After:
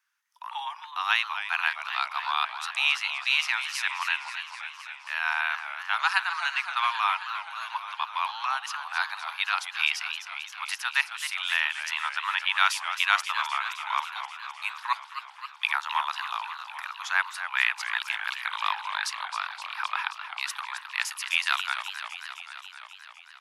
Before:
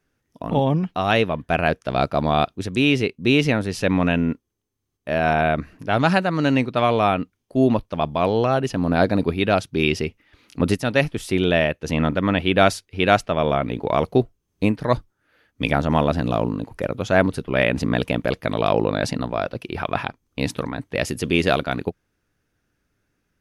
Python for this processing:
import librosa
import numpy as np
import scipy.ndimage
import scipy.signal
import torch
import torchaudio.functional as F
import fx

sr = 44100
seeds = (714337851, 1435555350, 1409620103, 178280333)

y = scipy.signal.sosfilt(scipy.signal.butter(12, 900.0, 'highpass', fs=sr, output='sos'), x)
y = fx.echo_warbled(y, sr, ms=262, feedback_pct=73, rate_hz=2.8, cents=178, wet_db=-10.0)
y = y * 10.0 ** (-1.0 / 20.0)